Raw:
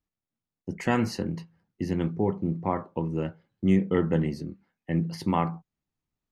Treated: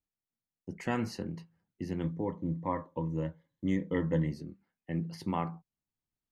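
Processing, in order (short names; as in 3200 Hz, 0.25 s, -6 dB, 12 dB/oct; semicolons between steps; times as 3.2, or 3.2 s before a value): 2.03–4.32 ripple EQ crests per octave 1.1, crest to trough 11 dB; gain -7.5 dB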